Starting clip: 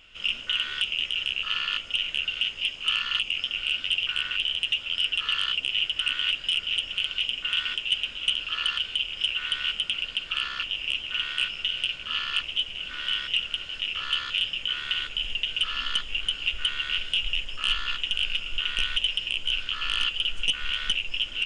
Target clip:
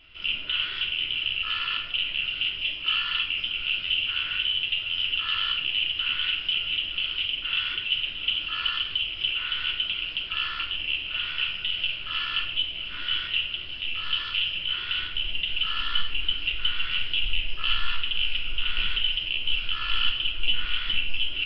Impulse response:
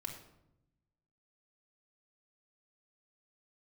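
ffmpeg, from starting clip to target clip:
-filter_complex "[0:a]asplit=3[a][b][c];[a]afade=t=out:st=13.43:d=0.02[d];[b]adynamicequalizer=threshold=0.00631:dfrequency=1400:dqfactor=1.2:tfrequency=1400:tqfactor=1.2:attack=5:release=100:ratio=0.375:range=2:mode=cutabove:tftype=bell,afade=t=in:st=13.43:d=0.02,afade=t=out:st=14.26:d=0.02[e];[c]afade=t=in:st=14.26:d=0.02[f];[d][e][f]amix=inputs=3:normalize=0[g];[1:a]atrim=start_sample=2205,afade=t=out:st=0.34:d=0.01,atrim=end_sample=15435,asetrate=42336,aresample=44100[h];[g][h]afir=irnorm=-1:irlink=0,volume=2.5dB" -ar 11025 -c:a nellymoser

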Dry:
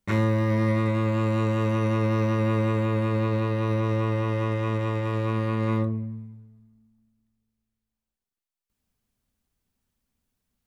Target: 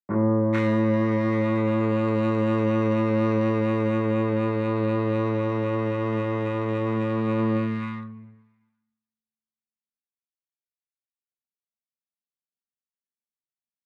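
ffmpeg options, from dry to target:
-filter_complex "[0:a]highpass=f=130:w=0.5412,highpass=f=130:w=1.3066,agate=range=-33dB:threshold=-47dB:ratio=3:detection=peak,acrossover=split=200|390|1800[a][b][c][d];[d]adynamicsmooth=sensitivity=5:basefreq=2.8k[e];[a][b][c][e]amix=inputs=4:normalize=0,atempo=0.77,acrossover=split=1200[f][g];[g]adelay=440[h];[f][h]amix=inputs=2:normalize=0,volume=3.5dB"

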